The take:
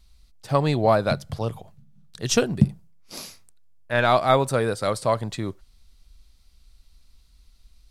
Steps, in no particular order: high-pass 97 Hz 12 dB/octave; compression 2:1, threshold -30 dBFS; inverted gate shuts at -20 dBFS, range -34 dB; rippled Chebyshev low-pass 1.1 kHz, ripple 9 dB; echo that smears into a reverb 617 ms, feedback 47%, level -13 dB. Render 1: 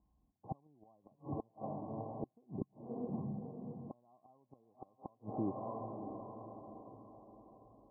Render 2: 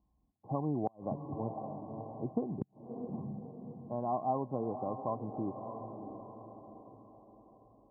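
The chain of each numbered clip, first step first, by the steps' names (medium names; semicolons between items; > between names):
echo that smears into a reverb > compression > high-pass > inverted gate > rippled Chebyshev low-pass; echo that smears into a reverb > compression > rippled Chebyshev low-pass > inverted gate > high-pass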